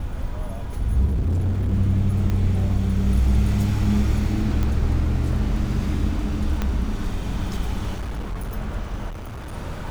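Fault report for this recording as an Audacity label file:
1.050000	1.740000	clipped -18.5 dBFS
2.300000	2.300000	pop -14 dBFS
4.630000	4.630000	pop -13 dBFS
6.620000	6.620000	pop -11 dBFS
7.960000	8.540000	clipped -24.5 dBFS
9.090000	9.540000	clipped -30.5 dBFS

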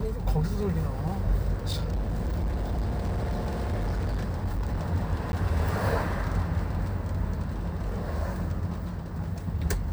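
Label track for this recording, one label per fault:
1.670000	4.810000	clipped -24.5 dBFS
5.320000	5.330000	gap

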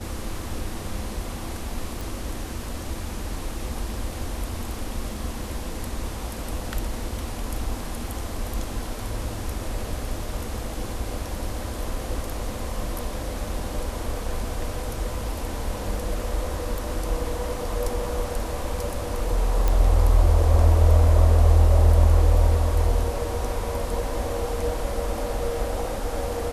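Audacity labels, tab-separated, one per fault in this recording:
2.010000	2.010000	pop
19.680000	19.680000	pop

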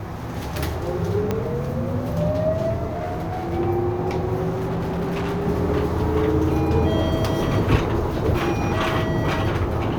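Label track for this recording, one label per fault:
1.310000	1.310000	pop -10 dBFS
2.910000	3.540000	clipped -23.5 dBFS
4.490000	5.470000	clipped -21.5 dBFS

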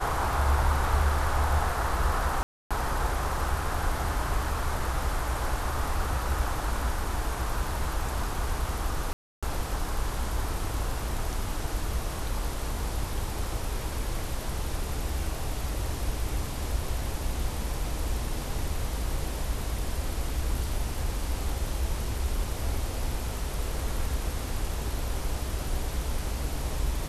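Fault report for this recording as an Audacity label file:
2.430000	2.710000	gap 0.276 s
9.130000	9.430000	gap 0.296 s

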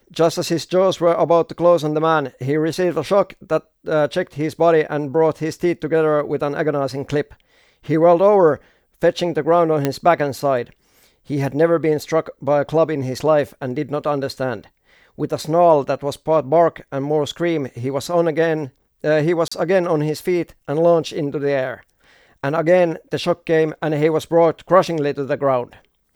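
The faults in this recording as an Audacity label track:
9.850000	9.850000	pop -5 dBFS
19.480000	19.520000	gap 35 ms

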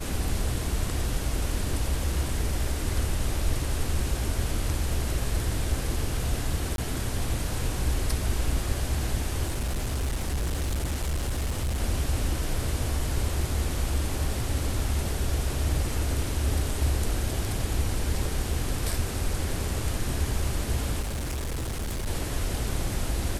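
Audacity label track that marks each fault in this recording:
6.760000	6.780000	gap 22 ms
9.450000	11.800000	clipped -24 dBFS
21.000000	22.080000	clipped -27.5 dBFS

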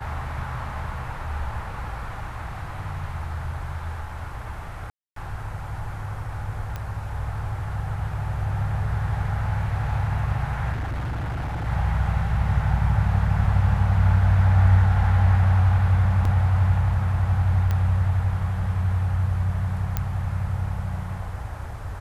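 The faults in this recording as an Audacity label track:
4.900000	5.160000	gap 0.263 s
6.760000	6.760000	pop -18 dBFS
10.720000	11.670000	clipped -25 dBFS
16.250000	16.250000	gap 2.7 ms
17.710000	17.710000	pop -14 dBFS
19.970000	19.970000	pop -10 dBFS

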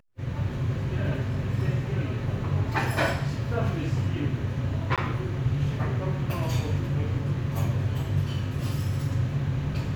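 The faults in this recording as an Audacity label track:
4.960000	4.980000	gap 17 ms

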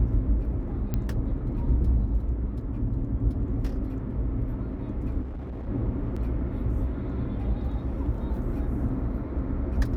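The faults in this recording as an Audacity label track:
0.940000	0.940000	pop -16 dBFS
5.210000	5.680000	clipped -32 dBFS
6.160000	6.170000	gap 5.2 ms

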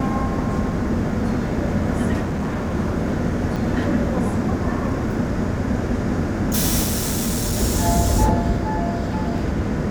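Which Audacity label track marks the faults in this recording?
2.230000	2.750000	clipped -20 dBFS
3.560000	3.570000	gap 5.7 ms
6.830000	7.590000	clipped -17.5 dBFS

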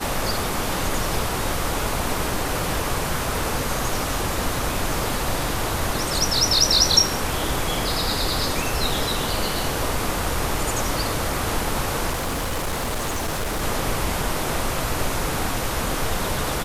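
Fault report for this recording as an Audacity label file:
12.110000	13.630000	clipped -21.5 dBFS

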